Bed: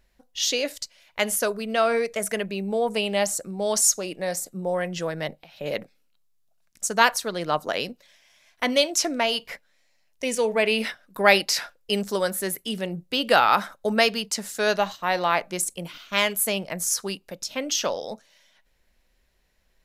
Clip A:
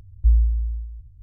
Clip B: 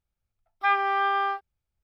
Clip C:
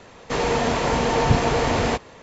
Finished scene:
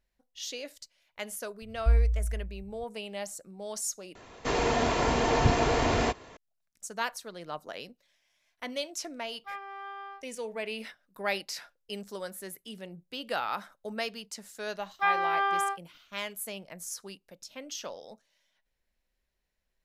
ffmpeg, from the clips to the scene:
ffmpeg -i bed.wav -i cue0.wav -i cue1.wav -i cue2.wav -filter_complex "[2:a]asplit=2[link_01][link_02];[0:a]volume=-14dB[link_03];[3:a]aecho=1:1:2.9:0.3[link_04];[link_03]asplit=2[link_05][link_06];[link_05]atrim=end=4.154[link_07];[link_04]atrim=end=2.22,asetpts=PTS-STARTPTS,volume=-5dB[link_08];[link_06]atrim=start=6.366[link_09];[1:a]atrim=end=1.22,asetpts=PTS-STARTPTS,volume=-6dB,afade=type=in:duration=0.004:curve=hsin,afade=type=out:start_time=1.216:duration=0.004:curve=hsin,adelay=1620[link_10];[link_01]atrim=end=1.83,asetpts=PTS-STARTPTS,volume=-17.5dB,afade=type=in:duration=0.004:curve=hsin,afade=type=out:start_time=1.826:duration=0.004:curve=hsin,adelay=8830[link_11];[link_02]atrim=end=1.83,asetpts=PTS-STARTPTS,volume=-3dB,afade=type=in:duration=0.004:curve=hsin,afade=type=out:start_time=1.826:duration=0.004:curve=hsin,adelay=14380[link_12];[link_07][link_08]acrossfade=duration=0.004:curve1=hsin:curve2=hsin[link_13];[link_13][link_09]acrossfade=duration=0.004:curve1=hsin:curve2=hsin[link_14];[link_14][link_10][link_11][link_12]amix=inputs=4:normalize=0" out.wav

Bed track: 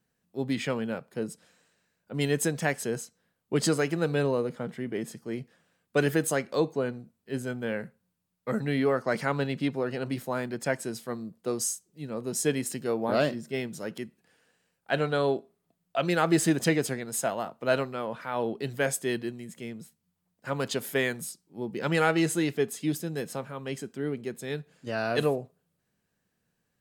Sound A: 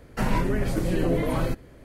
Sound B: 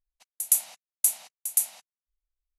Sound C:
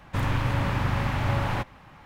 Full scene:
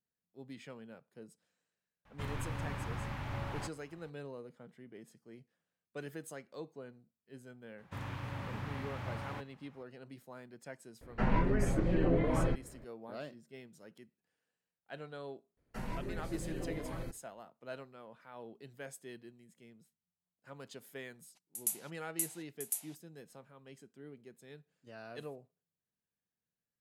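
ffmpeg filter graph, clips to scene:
ffmpeg -i bed.wav -i cue0.wav -i cue1.wav -i cue2.wav -filter_complex "[3:a]asplit=2[link_01][link_02];[1:a]asplit=2[link_03][link_04];[0:a]volume=-19.5dB[link_05];[link_01]asplit=2[link_06][link_07];[link_07]adelay=14,volume=-12dB[link_08];[link_06][link_08]amix=inputs=2:normalize=0[link_09];[link_02]highpass=78[link_10];[link_03]lowpass=2500[link_11];[link_04]agate=range=-12dB:threshold=-43dB:ratio=16:release=100:detection=peak[link_12];[link_09]atrim=end=2.05,asetpts=PTS-STARTPTS,volume=-14dB,afade=type=in:duration=0.004:curve=hsin,afade=type=out:start_time=2.046:duration=0.004:curve=hsin,adelay=2050[link_13];[link_10]atrim=end=2.05,asetpts=PTS-STARTPTS,volume=-15dB,afade=type=in:duration=0.004:curve=hsin,afade=type=out:start_time=2.046:duration=0.004:curve=hsin,adelay=343098S[link_14];[link_11]atrim=end=1.84,asetpts=PTS-STARTPTS,volume=-5.5dB,afade=type=in:duration=0.004:curve=hsin,afade=type=out:start_time=1.836:duration=0.004:curve=hsin,adelay=11010[link_15];[link_12]atrim=end=1.84,asetpts=PTS-STARTPTS,volume=-16.5dB,afade=type=in:duration=0.004:curve=hsin,afade=type=out:start_time=1.836:duration=0.004:curve=hsin,adelay=15570[link_16];[2:a]atrim=end=2.58,asetpts=PTS-STARTPTS,volume=-13dB,afade=type=in:duration=0.004:curve=hsin,afade=type=out:start_time=2.576:duration=0.004:curve=hsin,adelay=21150[link_17];[link_05][link_13][link_14][link_15][link_16][link_17]amix=inputs=6:normalize=0" out.wav

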